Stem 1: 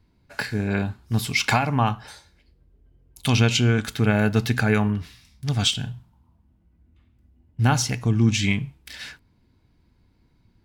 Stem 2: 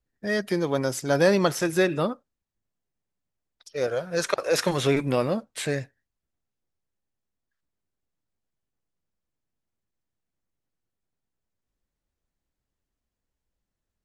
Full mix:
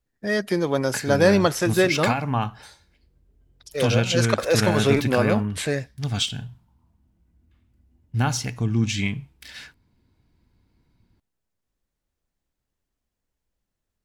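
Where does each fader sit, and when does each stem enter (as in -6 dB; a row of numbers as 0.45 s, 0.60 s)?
-3.0 dB, +2.5 dB; 0.55 s, 0.00 s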